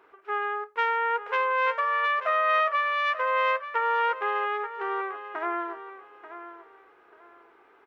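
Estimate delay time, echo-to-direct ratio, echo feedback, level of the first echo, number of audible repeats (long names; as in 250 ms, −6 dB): 886 ms, −12.0 dB, 24%, −12.5 dB, 2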